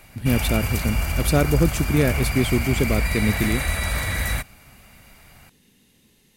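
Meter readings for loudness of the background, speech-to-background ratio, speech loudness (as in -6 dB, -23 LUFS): -25.0 LUFS, 1.5 dB, -23.5 LUFS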